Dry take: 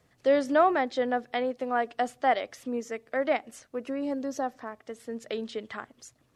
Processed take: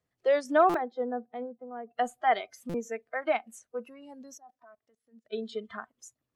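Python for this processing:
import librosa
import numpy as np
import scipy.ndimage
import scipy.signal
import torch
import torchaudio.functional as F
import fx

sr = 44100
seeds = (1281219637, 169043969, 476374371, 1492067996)

y = fx.level_steps(x, sr, step_db=24, at=(4.34, 5.32), fade=0.02)
y = fx.noise_reduce_blind(y, sr, reduce_db=18)
y = fx.bandpass_q(y, sr, hz=fx.line((0.76, 470.0), (1.96, 120.0)), q=0.97, at=(0.76, 1.96), fade=0.02)
y = fx.buffer_glitch(y, sr, at_s=(0.69, 2.69), block=256, repeats=8)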